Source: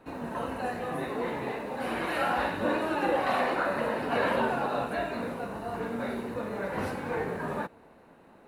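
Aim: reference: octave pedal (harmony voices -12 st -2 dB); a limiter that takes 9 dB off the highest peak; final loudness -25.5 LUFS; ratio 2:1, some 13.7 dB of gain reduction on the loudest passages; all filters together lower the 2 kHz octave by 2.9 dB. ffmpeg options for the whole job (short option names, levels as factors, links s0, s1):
-filter_complex "[0:a]equalizer=f=2000:t=o:g=-4,acompressor=threshold=0.00316:ratio=2,alimiter=level_in=5.31:limit=0.0631:level=0:latency=1,volume=0.188,asplit=2[s0][s1];[s1]asetrate=22050,aresample=44100,atempo=2,volume=0.794[s2];[s0][s2]amix=inputs=2:normalize=0,volume=10"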